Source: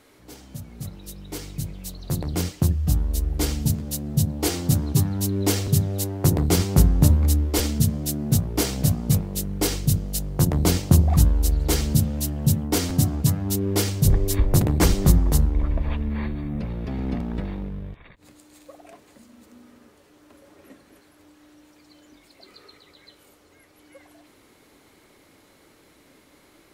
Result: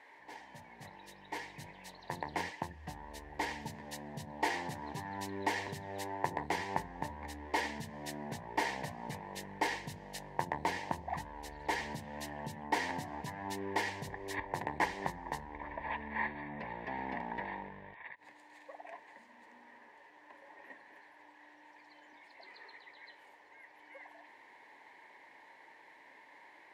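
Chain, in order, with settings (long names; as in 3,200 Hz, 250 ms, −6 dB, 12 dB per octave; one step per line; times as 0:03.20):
downward compressor, threshold −21 dBFS, peak gain reduction 12 dB
pair of resonant band-passes 1,300 Hz, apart 0.97 octaves
level +9.5 dB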